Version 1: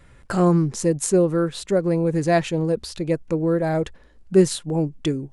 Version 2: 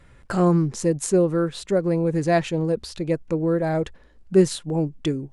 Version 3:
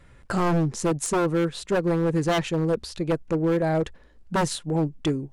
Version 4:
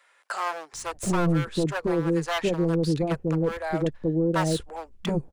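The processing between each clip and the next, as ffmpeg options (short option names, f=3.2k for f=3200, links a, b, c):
-af "highshelf=f=8.5k:g=-5,volume=-1dB"
-af "aeval=exprs='0.15*(abs(mod(val(0)/0.15+3,4)-2)-1)':c=same,aeval=exprs='0.158*(cos(1*acos(clip(val(0)/0.158,-1,1)))-cos(1*PI/2))+0.002*(cos(7*acos(clip(val(0)/0.158,-1,1)))-cos(7*PI/2))':c=same"
-filter_complex "[0:a]acrossover=split=150|690|3400[a][b][c][d];[d]asoftclip=type=tanh:threshold=-31.5dB[e];[a][b][c][e]amix=inputs=4:normalize=0,acrossover=split=630[f][g];[f]adelay=730[h];[h][g]amix=inputs=2:normalize=0"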